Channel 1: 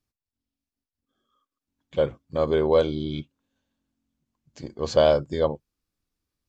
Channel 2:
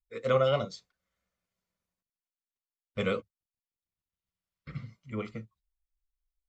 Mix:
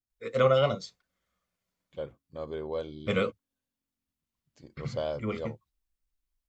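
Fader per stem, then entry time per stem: -14.5 dB, +2.5 dB; 0.00 s, 0.10 s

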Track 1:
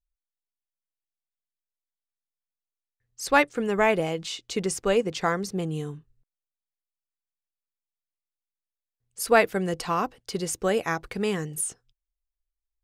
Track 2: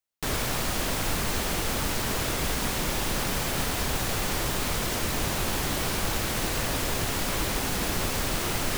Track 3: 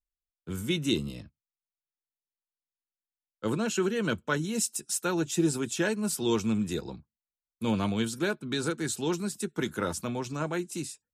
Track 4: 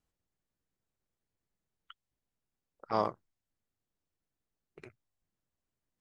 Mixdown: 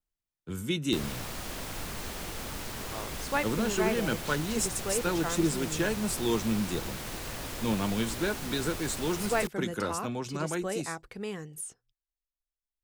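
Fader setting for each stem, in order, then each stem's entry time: -10.0 dB, -10.0 dB, -1.5 dB, -11.5 dB; 0.00 s, 0.70 s, 0.00 s, 0.00 s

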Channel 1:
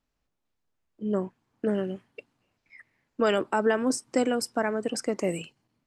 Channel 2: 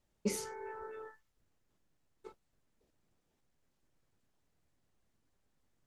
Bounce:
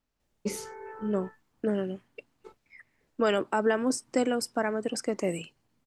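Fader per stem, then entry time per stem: -1.5 dB, +2.0 dB; 0.00 s, 0.20 s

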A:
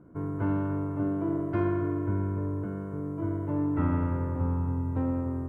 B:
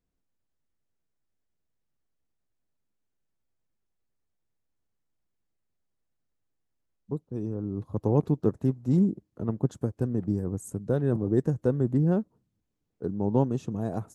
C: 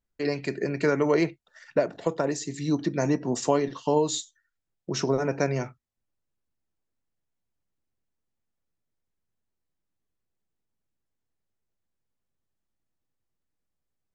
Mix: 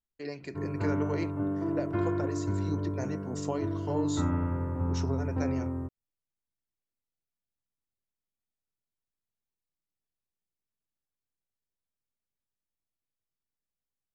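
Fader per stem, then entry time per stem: -2.0 dB, mute, -11.0 dB; 0.40 s, mute, 0.00 s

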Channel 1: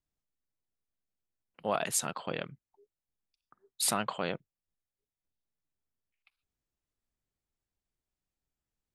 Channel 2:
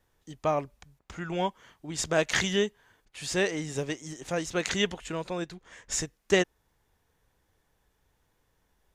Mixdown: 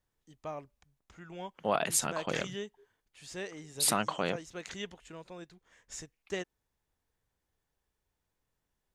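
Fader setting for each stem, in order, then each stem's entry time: +1.5 dB, -13.5 dB; 0.00 s, 0.00 s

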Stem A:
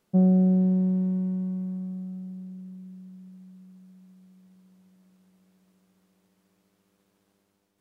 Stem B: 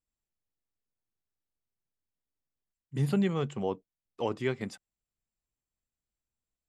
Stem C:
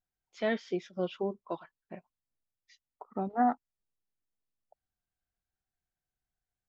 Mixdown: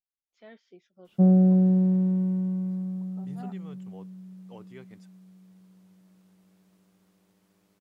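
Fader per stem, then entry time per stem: +1.5 dB, -17.0 dB, -19.5 dB; 1.05 s, 0.30 s, 0.00 s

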